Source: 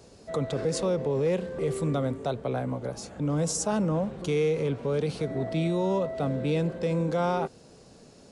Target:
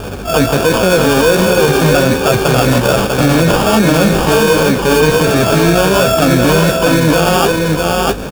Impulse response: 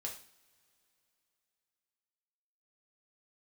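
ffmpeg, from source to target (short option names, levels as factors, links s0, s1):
-filter_complex "[0:a]highshelf=f=3300:t=q:w=1.5:g=-14,asplit=2[s0][s1];[s1]asetrate=88200,aresample=44100,atempo=0.5,volume=0.355[s2];[s0][s2]amix=inputs=2:normalize=0,bass=f=250:g=-2,treble=f=4000:g=15,areverse,acompressor=threshold=0.02:ratio=6,areverse,bandreject=f=1100:w=7.2,acrusher=samples=22:mix=1:aa=0.000001,aeval=exprs='val(0)+0.002*(sin(2*PI*50*n/s)+sin(2*PI*2*50*n/s)/2+sin(2*PI*3*50*n/s)/3+sin(2*PI*4*50*n/s)/4+sin(2*PI*5*50*n/s)/5)':c=same,flanger=delay=9.1:depth=9.4:regen=33:speed=1.3:shape=sinusoidal,asplit=2[s3][s4];[s4]aecho=0:1:645:0.562[s5];[s3][s5]amix=inputs=2:normalize=0,alimiter=level_in=42.2:limit=0.891:release=50:level=0:latency=1,volume=0.891"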